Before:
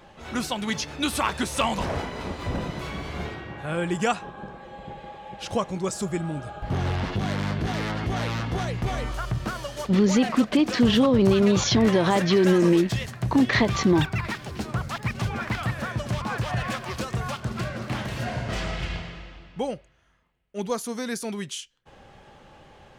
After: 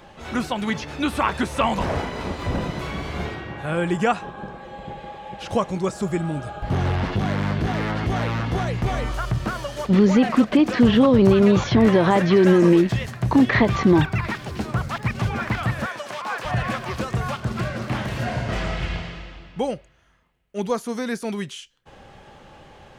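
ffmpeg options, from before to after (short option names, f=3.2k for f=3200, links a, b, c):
-filter_complex "[0:a]asettb=1/sr,asplit=3[a][b][c];[a]atrim=end=15.864[d];[b]atrim=start=15.86:end=16.45,asetpts=PTS-STARTPTS,afade=t=in:d=0.004:c=qsin,afade=t=out:st=0.586:d=0.004:c=qsin,highpass=560[e];[c]atrim=start=16.446[f];[d][e]acrossfade=d=0.004:c1=hsin:c2=qsin[g];[g][f]acrossfade=d=0.004:c1=qsin:c2=hsin,acrossover=split=2700[h][i];[i]acompressor=threshold=-43dB:ratio=4:attack=1:release=60[j];[h][j]amix=inputs=2:normalize=0,volume=4dB"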